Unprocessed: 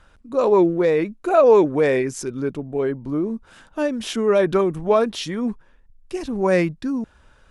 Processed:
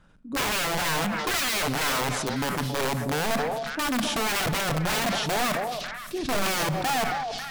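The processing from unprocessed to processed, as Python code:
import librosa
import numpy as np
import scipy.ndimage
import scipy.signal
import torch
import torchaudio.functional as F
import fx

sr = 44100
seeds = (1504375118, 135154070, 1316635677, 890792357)

p1 = fx.peak_eq(x, sr, hz=180.0, db=12.5, octaves=1.3)
p2 = (np.mod(10.0 ** (14.0 / 20.0) * p1 + 1.0, 2.0) - 1.0) / 10.0 ** (14.0 / 20.0)
p3 = p2 + fx.echo_stepped(p2, sr, ms=273, hz=600.0, octaves=1.4, feedback_pct=70, wet_db=-6.0, dry=0)
p4 = fx.room_shoebox(p3, sr, seeds[0], volume_m3=950.0, walls='mixed', distance_m=0.34)
p5 = fx.sustainer(p4, sr, db_per_s=25.0)
y = p5 * librosa.db_to_amplitude(-8.0)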